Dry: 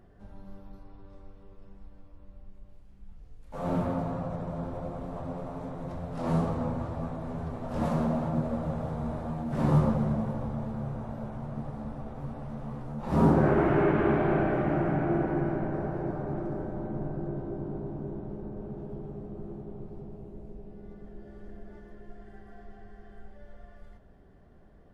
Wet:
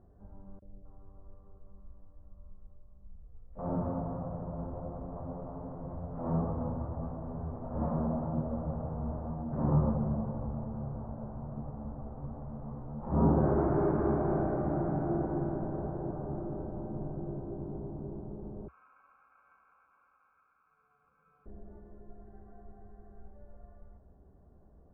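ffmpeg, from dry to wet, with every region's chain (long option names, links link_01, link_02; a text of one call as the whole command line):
ffmpeg -i in.wav -filter_complex "[0:a]asettb=1/sr,asplit=3[link_01][link_02][link_03];[link_01]atrim=end=0.594[link_04];[link_02]atrim=start=0.59:end=3.59,asetpts=PTS-STARTPTS,afade=type=in:duration=0.004:curve=qsin,afade=type=out:start_time=2.996:duration=0.004:curve=qsin,equalizer=frequency=64:width_type=o:width=2.4:gain=-3.5,aecho=1:1:1.7:0.39,atrim=end_sample=132300,acrossover=split=630|2200[link_05][link_06][link_07];[link_05]adelay=30[link_08];[link_06]adelay=260[link_09];[link_08][link_09][link_07]amix=inputs=3:normalize=0,atrim=end_sample=132300[link_10];[link_03]atrim=start=3.586[link_11];[link_04][link_10]acrossfade=duration=0.004:curve1=hsin:curve2=qsin[link_12];[link_12][link_11]acrossfade=duration=0.004:curve1=qsin:curve2=hsin,asettb=1/sr,asplit=3[link_13][link_14][link_15];[link_13]atrim=end=18.684[link_16];[link_14]atrim=start=18.68:end=21.46,asetpts=PTS-STARTPTS,afade=type=in:duration=0.004:curve=qsin,afade=type=out:start_time=2.776:duration=0.004:curve=qsin,highpass=frequency=430:width=0.5412,highpass=frequency=430:width=1.3066,aecho=1:1:3.6:0.96,atrim=end_sample=122598,aeval=exprs='val(0)*sin(2*PI*1900*n/s)':channel_layout=same[link_17];[link_15]atrim=start=21.456[link_18];[link_16][link_17]acrossfade=duration=0.004:curve1=hsin:curve2=qsin[link_19];[link_19][link_18]acrossfade=duration=0.004:curve1=qsin:curve2=hsin,lowpass=frequency=1200:width=0.5412,lowpass=frequency=1200:width=1.3066,equalizer=frequency=67:width=2.2:gain=7,volume=-4.5dB" out.wav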